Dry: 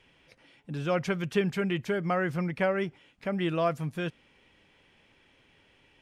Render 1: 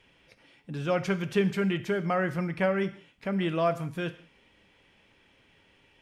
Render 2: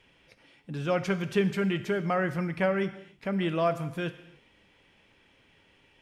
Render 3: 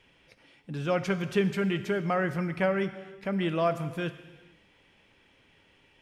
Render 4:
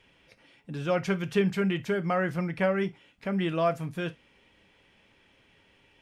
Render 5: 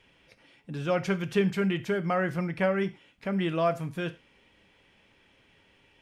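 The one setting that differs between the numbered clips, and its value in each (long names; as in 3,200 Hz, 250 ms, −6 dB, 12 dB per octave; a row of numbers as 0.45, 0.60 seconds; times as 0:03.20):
reverb whose tail is shaped and stops, gate: 210, 330, 500, 90, 130 milliseconds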